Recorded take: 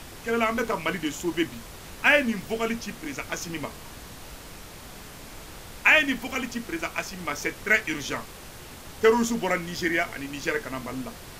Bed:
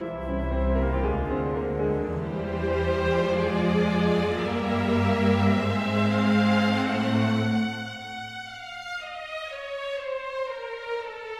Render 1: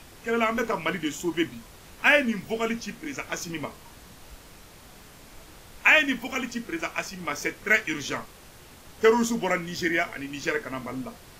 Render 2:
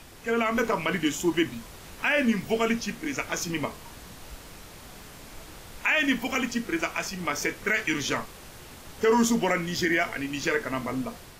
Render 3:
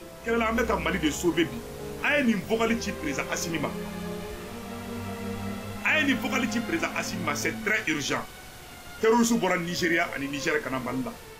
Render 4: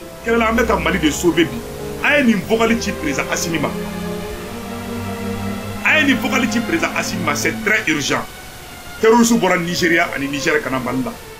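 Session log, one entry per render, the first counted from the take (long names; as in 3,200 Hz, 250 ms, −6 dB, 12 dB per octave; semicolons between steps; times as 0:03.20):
noise reduction from a noise print 6 dB
brickwall limiter −17 dBFS, peak gain reduction 11 dB; automatic gain control gain up to 3.5 dB
mix in bed −12.5 dB
level +10 dB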